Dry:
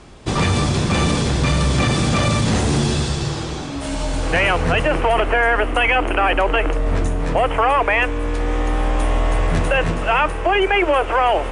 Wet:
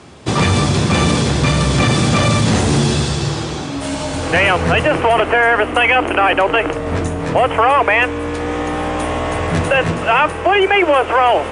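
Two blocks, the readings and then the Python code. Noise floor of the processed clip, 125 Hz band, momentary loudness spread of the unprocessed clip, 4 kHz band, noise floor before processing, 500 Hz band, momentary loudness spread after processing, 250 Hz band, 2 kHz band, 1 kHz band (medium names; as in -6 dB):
-24 dBFS, +3.0 dB, 7 LU, +4.0 dB, -26 dBFS, +4.0 dB, 8 LU, +4.0 dB, +4.0 dB, +4.0 dB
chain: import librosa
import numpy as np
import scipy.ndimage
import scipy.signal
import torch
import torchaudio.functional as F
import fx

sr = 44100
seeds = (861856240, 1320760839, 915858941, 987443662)

y = scipy.signal.sosfilt(scipy.signal.butter(4, 74.0, 'highpass', fs=sr, output='sos'), x)
y = y * librosa.db_to_amplitude(4.0)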